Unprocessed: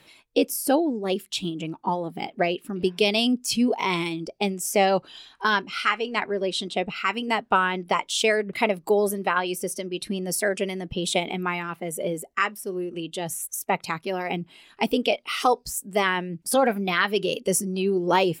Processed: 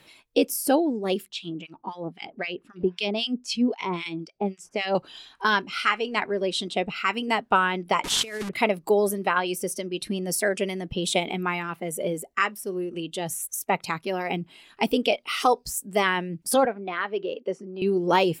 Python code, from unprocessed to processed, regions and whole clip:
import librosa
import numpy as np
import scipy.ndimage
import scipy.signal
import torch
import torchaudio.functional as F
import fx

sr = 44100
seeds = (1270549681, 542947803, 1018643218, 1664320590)

y = fx.chain(x, sr, fx.lowpass(hz=5100.0, slope=12),
    fx.harmonic_tremolo(hz=3.8, depth_pct=100, crossover_hz=1300.0), at=(1.28, 4.95))
y = fx.chain(y, sr, fx.delta_mod(bps=64000, step_db=-29.0),
    fx.over_compress(threshold_db=-26.0, ratio=-0.5),
    fx.peak_eq(hz=610.0, db=-8.0, octaves=0.53), at=(8.04, 8.49))
y = fx.chain(y, sr, fx.highpass(hz=360.0, slope=12),
    fx.spacing_loss(db_at_10k=41), at=(16.65, 17.82))